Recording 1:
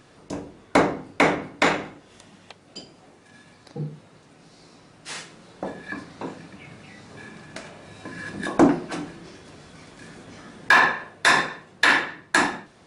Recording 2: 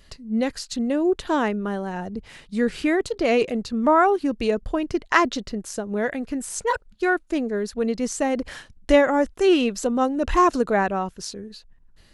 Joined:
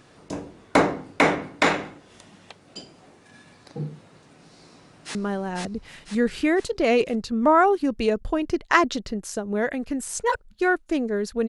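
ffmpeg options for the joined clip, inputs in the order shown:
ffmpeg -i cue0.wav -i cue1.wav -filter_complex "[0:a]apad=whole_dur=11.48,atrim=end=11.48,atrim=end=5.152[link_01];[1:a]atrim=start=1.558:end=7.89[link_02];[link_01][link_02]acrossfade=duration=0.004:curve1=hsin:curve2=hsin,asplit=2[link_03][link_04];[link_04]afade=type=in:start_time=4.59:duration=0.01,afade=type=out:start_time=5.15:duration=0.01,aecho=0:1:500|1000|1500|2000|2500|3000:0.891251|0.401063|0.180478|0.0812152|0.0365469|0.0164461[link_05];[link_03][link_05]amix=inputs=2:normalize=0" out.wav

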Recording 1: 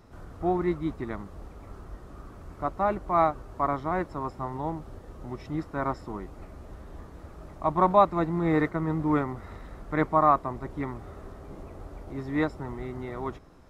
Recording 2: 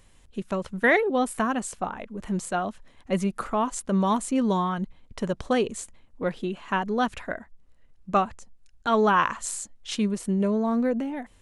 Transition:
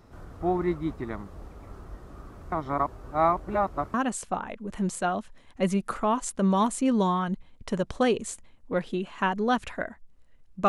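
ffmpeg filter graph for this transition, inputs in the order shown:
ffmpeg -i cue0.wav -i cue1.wav -filter_complex "[0:a]apad=whole_dur=10.68,atrim=end=10.68,asplit=2[link_01][link_02];[link_01]atrim=end=2.522[link_03];[link_02]atrim=start=2.518:end=3.942,asetpts=PTS-STARTPTS,areverse[link_04];[1:a]atrim=start=1.438:end=8.18[link_05];[link_03][link_04]acrossfade=duration=0.004:curve1=hsin:curve2=hsin[link_06];[link_06][link_05]acrossfade=duration=0.004:curve1=hsin:curve2=hsin" out.wav

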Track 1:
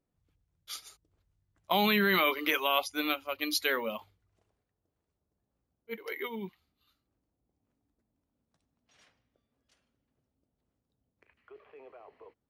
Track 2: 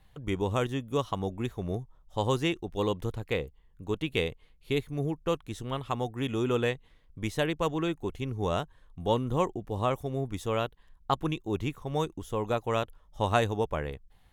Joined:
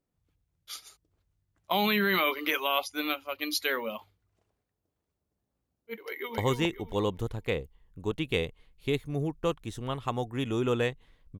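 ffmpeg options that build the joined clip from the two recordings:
ffmpeg -i cue0.wav -i cue1.wav -filter_complex "[0:a]apad=whole_dur=11.39,atrim=end=11.39,atrim=end=6.382[link_01];[1:a]atrim=start=2.208:end=7.22[link_02];[link_01][link_02]acrossfade=duration=0.004:curve1=hsin:curve2=hsin,asplit=2[link_03][link_04];[link_04]afade=type=in:start_time=6.01:duration=0.01,afade=type=out:start_time=6.38:duration=0.01,aecho=0:1:270|540|810|1080:0.841395|0.210349|0.0525872|0.0131468[link_05];[link_03][link_05]amix=inputs=2:normalize=0" out.wav

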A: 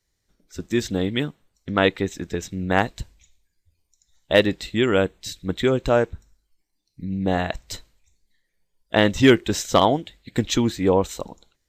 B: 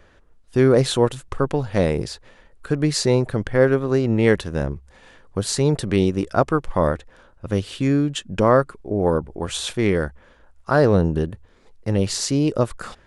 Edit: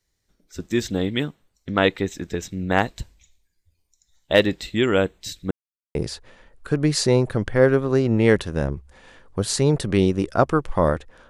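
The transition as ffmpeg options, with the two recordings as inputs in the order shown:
ffmpeg -i cue0.wav -i cue1.wav -filter_complex "[0:a]apad=whole_dur=11.29,atrim=end=11.29,asplit=2[link_01][link_02];[link_01]atrim=end=5.51,asetpts=PTS-STARTPTS,afade=type=out:start_time=5.506:duration=0.004:curve=hsin[link_03];[link_02]atrim=start=5.51:end=5.95,asetpts=PTS-STARTPTS,volume=0[link_04];[1:a]atrim=start=1.94:end=7.28,asetpts=PTS-STARTPTS,afade=type=in:duration=0.004:curve=hsin[link_05];[link_03][link_04][link_05]concat=n=3:v=0:a=1" out.wav

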